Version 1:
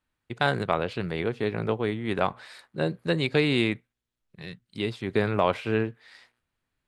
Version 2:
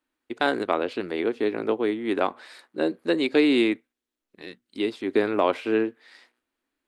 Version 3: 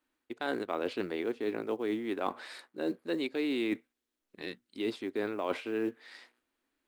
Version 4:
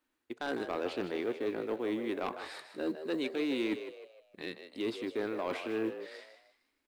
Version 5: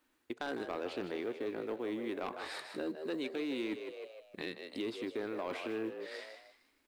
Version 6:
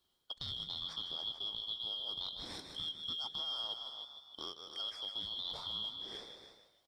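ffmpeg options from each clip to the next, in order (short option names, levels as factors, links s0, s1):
-af "lowshelf=f=200:t=q:w=3:g=-12"
-af "areverse,acompressor=threshold=0.0355:ratio=10,areverse,acrusher=bits=9:mode=log:mix=0:aa=0.000001"
-filter_complex "[0:a]aeval=exprs='0.133*sin(PI/2*1.78*val(0)/0.133)':c=same,asplit=2[s0][s1];[s1]asplit=4[s2][s3][s4][s5];[s2]adelay=154,afreqshift=70,volume=0.316[s6];[s3]adelay=308,afreqshift=140,volume=0.12[s7];[s4]adelay=462,afreqshift=210,volume=0.0457[s8];[s5]adelay=616,afreqshift=280,volume=0.0174[s9];[s6][s7][s8][s9]amix=inputs=4:normalize=0[s10];[s0][s10]amix=inputs=2:normalize=0,volume=0.355"
-af "acompressor=threshold=0.00501:ratio=2.5,volume=2"
-af "afftfilt=real='real(if(lt(b,272),68*(eq(floor(b/68),0)*1+eq(floor(b/68),1)*3+eq(floor(b/68),2)*0+eq(floor(b/68),3)*2)+mod(b,68),b),0)':imag='imag(if(lt(b,272),68*(eq(floor(b/68),0)*1+eq(floor(b/68),1)*3+eq(floor(b/68),2)*0+eq(floor(b/68),3)*2)+mod(b,68),b),0)':win_size=2048:overlap=0.75,aecho=1:1:289:0.316,volume=0.668"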